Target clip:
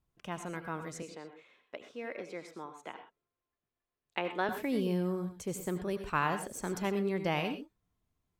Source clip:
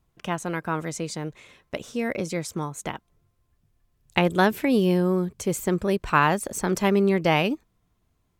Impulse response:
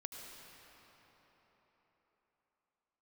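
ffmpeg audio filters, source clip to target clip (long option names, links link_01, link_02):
-filter_complex "[0:a]asettb=1/sr,asplit=3[link_01][link_02][link_03];[link_01]atrim=end=1.024[link_04];[link_02]atrim=start=1.02:end=4.49,asetpts=PTS-STARTPTS,afade=type=in:duration=0.004:curve=qsin,afade=type=out:start_time=3.466:duration=0.004:curve=qsin,acrossover=split=270 4100:gain=0.0891 1 0.178[link_05][link_06][link_07];[link_05][link_06][link_07]amix=inputs=3:normalize=0[link_08];[link_03]atrim=start=4.486[link_09];[link_04][link_08]acrossfade=duration=0.004:curve1=hsin:curve2=qsin[link_10];[link_10][link_09]acrossfade=duration=0.004:curve1=qsin:curve2=hsin[link_11];[1:a]atrim=start_sample=2205,afade=type=out:start_time=0.18:duration=0.01,atrim=end_sample=8379[link_12];[link_11][link_12]afir=irnorm=-1:irlink=0,volume=-6.5dB"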